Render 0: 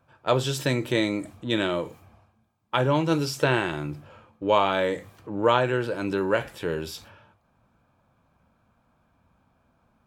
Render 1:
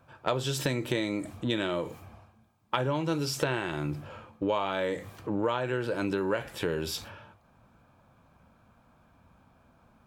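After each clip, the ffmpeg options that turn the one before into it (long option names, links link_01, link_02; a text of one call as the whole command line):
ffmpeg -i in.wav -af "acompressor=threshold=-31dB:ratio=5,volume=4.5dB" out.wav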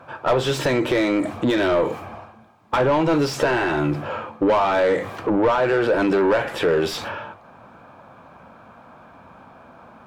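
ffmpeg -i in.wav -filter_complex "[0:a]asplit=2[link_01][link_02];[link_02]highpass=frequency=720:poles=1,volume=27dB,asoftclip=type=tanh:threshold=-10dB[link_03];[link_01][link_03]amix=inputs=2:normalize=0,lowpass=frequency=1000:poles=1,volume=-6dB,volume=2.5dB" out.wav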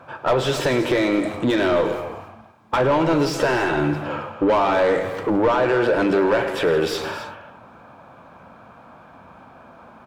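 ffmpeg -i in.wav -af "aecho=1:1:106|167|266:0.188|0.178|0.224" out.wav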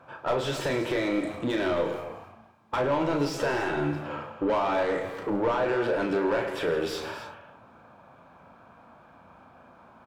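ffmpeg -i in.wav -filter_complex "[0:a]asplit=2[link_01][link_02];[link_02]adelay=35,volume=-6.5dB[link_03];[link_01][link_03]amix=inputs=2:normalize=0,volume=-8.5dB" out.wav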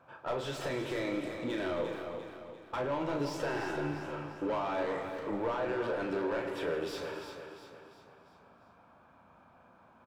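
ffmpeg -i in.wav -af "aecho=1:1:347|694|1041|1388|1735:0.376|0.173|0.0795|0.0366|0.0168,volume=-8dB" out.wav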